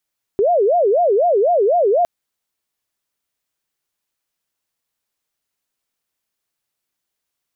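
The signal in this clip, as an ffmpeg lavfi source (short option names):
-f lavfi -i "aevalsrc='0.266*sin(2*PI*(550.5*t-163.5/(2*PI*4)*sin(2*PI*4*t)))':d=1.66:s=44100"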